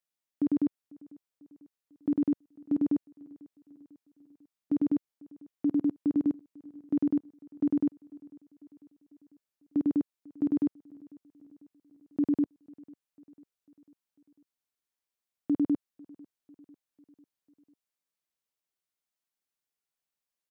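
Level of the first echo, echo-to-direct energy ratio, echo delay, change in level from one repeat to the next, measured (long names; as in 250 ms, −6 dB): −23.5 dB, −22.0 dB, 497 ms, −5.0 dB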